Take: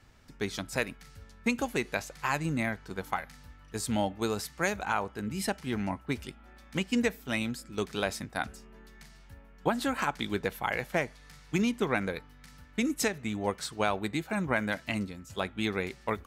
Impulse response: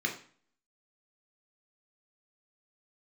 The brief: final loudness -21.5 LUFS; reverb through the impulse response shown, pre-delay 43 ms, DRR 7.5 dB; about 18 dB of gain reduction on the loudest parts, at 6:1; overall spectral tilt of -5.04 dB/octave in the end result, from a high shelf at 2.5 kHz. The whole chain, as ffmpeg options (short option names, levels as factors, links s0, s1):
-filter_complex "[0:a]highshelf=f=2500:g=-4.5,acompressor=threshold=0.00631:ratio=6,asplit=2[s0][s1];[1:a]atrim=start_sample=2205,adelay=43[s2];[s1][s2]afir=irnorm=-1:irlink=0,volume=0.188[s3];[s0][s3]amix=inputs=2:normalize=0,volume=20"